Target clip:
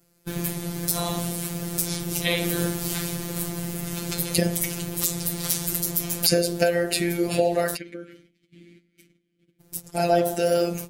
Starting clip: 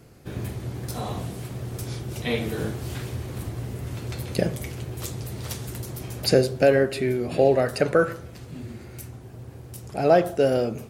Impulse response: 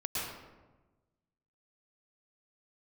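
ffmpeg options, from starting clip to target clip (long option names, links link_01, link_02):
-filter_complex "[0:a]agate=range=-18dB:threshold=-37dB:ratio=16:detection=peak,bandreject=frequency=75.73:width_type=h:width=4,bandreject=frequency=151.46:width_type=h:width=4,bandreject=frequency=227.19:width_type=h:width=4,bandreject=frequency=302.92:width_type=h:width=4,bandreject=frequency=378.65:width_type=h:width=4,bandreject=frequency=454.38:width_type=h:width=4,bandreject=frequency=530.11:width_type=h:width=4,bandreject=frequency=605.84:width_type=h:width=4,bandreject=frequency=681.57:width_type=h:width=4,bandreject=frequency=757.3:width_type=h:width=4,bandreject=frequency=833.03:width_type=h:width=4,bandreject=frequency=908.76:width_type=h:width=4,bandreject=frequency=984.49:width_type=h:width=4,bandreject=frequency=1060.22:width_type=h:width=4,bandreject=frequency=1135.95:width_type=h:width=4,acompressor=threshold=-21dB:ratio=6,asplit=3[link_01][link_02][link_03];[link_01]afade=type=out:start_time=7.75:duration=0.02[link_04];[link_02]asplit=3[link_05][link_06][link_07];[link_05]bandpass=frequency=270:width_type=q:width=8,volume=0dB[link_08];[link_06]bandpass=frequency=2290:width_type=q:width=8,volume=-6dB[link_09];[link_07]bandpass=frequency=3010:width_type=q:width=8,volume=-9dB[link_10];[link_08][link_09][link_10]amix=inputs=3:normalize=0,afade=type=in:start_time=7.75:duration=0.02,afade=type=out:start_time=9.59:duration=0.02[link_11];[link_03]afade=type=in:start_time=9.59:duration=0.02[link_12];[link_04][link_11][link_12]amix=inputs=3:normalize=0,afftfilt=real='hypot(re,im)*cos(PI*b)':imag='0':win_size=1024:overlap=0.75,crystalizer=i=2.5:c=0,aeval=exprs='0.668*(cos(1*acos(clip(val(0)/0.668,-1,1)))-cos(1*PI/2))+0.0211*(cos(4*acos(clip(val(0)/0.668,-1,1)))-cos(4*PI/2))':channel_layout=same,alimiter=level_in=8dB:limit=-1dB:release=50:level=0:latency=1,volume=-1dB"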